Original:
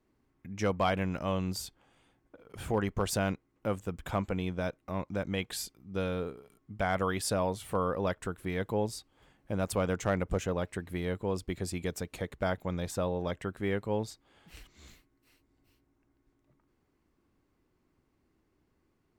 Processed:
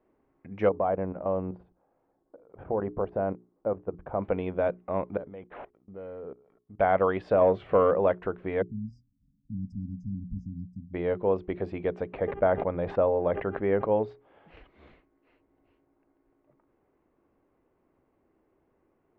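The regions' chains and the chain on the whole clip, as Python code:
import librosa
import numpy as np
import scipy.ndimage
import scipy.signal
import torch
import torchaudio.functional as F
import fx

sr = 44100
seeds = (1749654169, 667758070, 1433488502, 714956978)

y = fx.chain(x, sr, fx.lowpass(hz=1100.0, slope=12),
    fx.level_steps(step_db=11), at=(0.69, 4.22))
y = fx.chain(y, sr, fx.high_shelf(hz=3500.0, db=-7.0),
    fx.level_steps(step_db=23),
    fx.resample_linear(factor=8), at=(5.17, 6.79))
y = fx.chain(y, sr, fx.notch(hz=880.0, q=5.9),
    fx.leveller(passes=1), at=(7.41, 7.91))
y = fx.chain(y, sr, fx.brickwall_bandstop(low_hz=270.0, high_hz=4800.0),
    fx.high_shelf(hz=8200.0, db=-6.0), at=(8.62, 10.94))
y = fx.bass_treble(y, sr, bass_db=1, treble_db=-14, at=(12.12, 13.9), fade=0.02)
y = fx.dmg_buzz(y, sr, base_hz=400.0, harmonics=8, level_db=-65.0, tilt_db=-8, odd_only=False, at=(12.12, 13.9), fade=0.02)
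y = fx.sustainer(y, sr, db_per_s=68.0, at=(12.12, 13.9), fade=0.02)
y = scipy.signal.sosfilt(scipy.signal.butter(4, 2800.0, 'lowpass', fs=sr, output='sos'), y)
y = fx.peak_eq(y, sr, hz=570.0, db=13.0, octaves=2.1)
y = fx.hum_notches(y, sr, base_hz=60, count=7)
y = y * 10.0 ** (-3.0 / 20.0)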